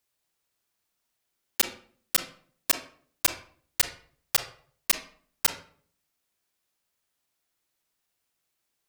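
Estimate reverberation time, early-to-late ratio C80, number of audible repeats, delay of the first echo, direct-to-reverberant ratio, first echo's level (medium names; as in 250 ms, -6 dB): 0.50 s, 14.0 dB, no echo, no echo, 6.5 dB, no echo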